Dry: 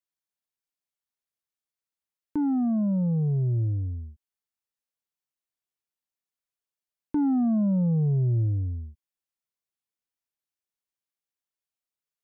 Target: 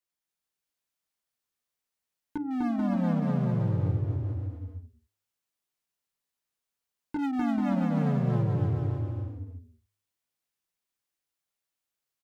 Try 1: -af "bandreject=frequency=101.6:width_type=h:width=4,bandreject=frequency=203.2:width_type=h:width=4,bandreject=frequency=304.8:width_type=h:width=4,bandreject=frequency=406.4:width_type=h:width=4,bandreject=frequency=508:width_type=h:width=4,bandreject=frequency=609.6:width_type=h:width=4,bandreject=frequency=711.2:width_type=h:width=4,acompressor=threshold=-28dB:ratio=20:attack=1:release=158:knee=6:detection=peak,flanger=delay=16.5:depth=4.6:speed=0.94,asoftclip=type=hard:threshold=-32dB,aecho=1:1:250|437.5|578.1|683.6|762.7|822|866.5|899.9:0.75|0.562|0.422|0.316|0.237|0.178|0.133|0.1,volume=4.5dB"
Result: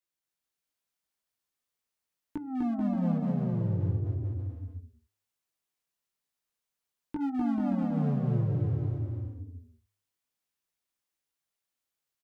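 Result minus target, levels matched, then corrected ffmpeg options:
downward compressor: peak gain reduction +10 dB
-af "bandreject=frequency=101.6:width_type=h:width=4,bandreject=frequency=203.2:width_type=h:width=4,bandreject=frequency=304.8:width_type=h:width=4,bandreject=frequency=406.4:width_type=h:width=4,bandreject=frequency=508:width_type=h:width=4,bandreject=frequency=609.6:width_type=h:width=4,bandreject=frequency=711.2:width_type=h:width=4,flanger=delay=16.5:depth=4.6:speed=0.94,asoftclip=type=hard:threshold=-32dB,aecho=1:1:250|437.5|578.1|683.6|762.7|822|866.5|899.9:0.75|0.562|0.422|0.316|0.237|0.178|0.133|0.1,volume=4.5dB"

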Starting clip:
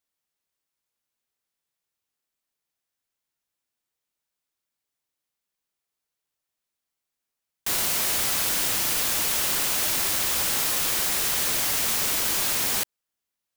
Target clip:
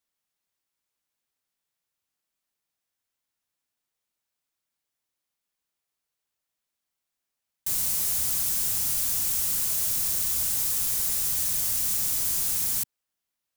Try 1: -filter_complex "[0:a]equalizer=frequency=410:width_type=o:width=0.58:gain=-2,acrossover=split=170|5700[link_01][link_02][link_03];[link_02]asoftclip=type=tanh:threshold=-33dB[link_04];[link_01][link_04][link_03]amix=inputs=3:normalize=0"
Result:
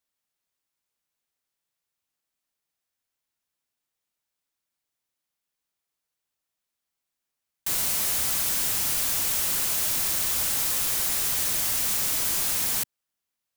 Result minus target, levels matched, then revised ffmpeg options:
soft clipping: distortion −5 dB
-filter_complex "[0:a]equalizer=frequency=410:width_type=o:width=0.58:gain=-2,acrossover=split=170|5700[link_01][link_02][link_03];[link_02]asoftclip=type=tanh:threshold=-44dB[link_04];[link_01][link_04][link_03]amix=inputs=3:normalize=0"

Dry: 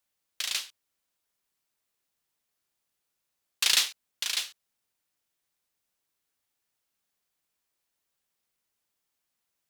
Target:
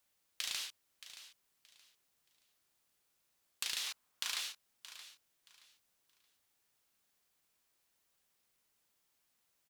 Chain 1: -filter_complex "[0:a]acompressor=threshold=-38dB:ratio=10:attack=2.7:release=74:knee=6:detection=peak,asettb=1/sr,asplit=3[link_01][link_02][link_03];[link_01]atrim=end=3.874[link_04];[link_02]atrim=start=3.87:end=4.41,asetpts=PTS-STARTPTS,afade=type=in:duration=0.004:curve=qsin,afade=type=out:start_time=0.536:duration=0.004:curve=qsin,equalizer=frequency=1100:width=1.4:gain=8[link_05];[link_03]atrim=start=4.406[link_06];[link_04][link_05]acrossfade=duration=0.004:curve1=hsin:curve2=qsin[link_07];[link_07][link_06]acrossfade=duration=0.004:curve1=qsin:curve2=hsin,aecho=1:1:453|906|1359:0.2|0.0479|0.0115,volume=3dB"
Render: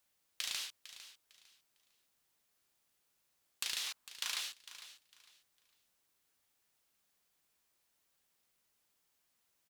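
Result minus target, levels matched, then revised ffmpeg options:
echo 171 ms early
-filter_complex "[0:a]acompressor=threshold=-38dB:ratio=10:attack=2.7:release=74:knee=6:detection=peak,asettb=1/sr,asplit=3[link_01][link_02][link_03];[link_01]atrim=end=3.874[link_04];[link_02]atrim=start=3.87:end=4.41,asetpts=PTS-STARTPTS,afade=type=in:duration=0.004:curve=qsin,afade=type=out:start_time=0.536:duration=0.004:curve=qsin,equalizer=frequency=1100:width=1.4:gain=8[link_05];[link_03]atrim=start=4.406[link_06];[link_04][link_05]acrossfade=duration=0.004:curve1=hsin:curve2=qsin[link_07];[link_07][link_06]acrossfade=duration=0.004:curve1=qsin:curve2=hsin,aecho=1:1:624|1248|1872:0.2|0.0479|0.0115,volume=3dB"

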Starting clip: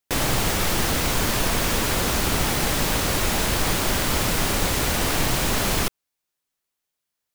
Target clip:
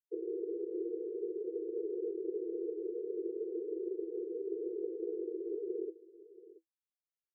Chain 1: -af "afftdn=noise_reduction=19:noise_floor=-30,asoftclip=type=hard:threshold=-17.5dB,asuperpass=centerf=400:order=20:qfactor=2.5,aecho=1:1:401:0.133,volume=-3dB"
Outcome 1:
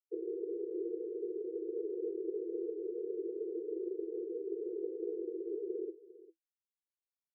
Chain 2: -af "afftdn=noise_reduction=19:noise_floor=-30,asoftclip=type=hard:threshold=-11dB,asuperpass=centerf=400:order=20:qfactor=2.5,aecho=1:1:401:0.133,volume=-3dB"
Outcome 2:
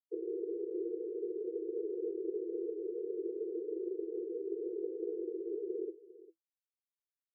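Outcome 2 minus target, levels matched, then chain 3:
echo 279 ms early
-af "afftdn=noise_reduction=19:noise_floor=-30,asoftclip=type=hard:threshold=-11dB,asuperpass=centerf=400:order=20:qfactor=2.5,aecho=1:1:680:0.133,volume=-3dB"

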